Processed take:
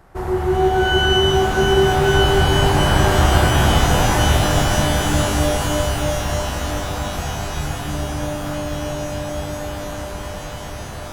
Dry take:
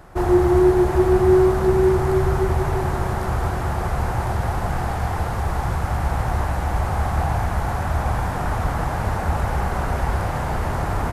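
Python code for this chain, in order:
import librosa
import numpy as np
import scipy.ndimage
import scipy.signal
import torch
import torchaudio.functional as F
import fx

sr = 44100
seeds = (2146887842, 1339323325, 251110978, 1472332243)

y = fx.doppler_pass(x, sr, speed_mps=13, closest_m=13.0, pass_at_s=3.37)
y = fx.rev_shimmer(y, sr, seeds[0], rt60_s=3.8, semitones=12, shimmer_db=-2, drr_db=4.0)
y = y * 10.0 ** (6.0 / 20.0)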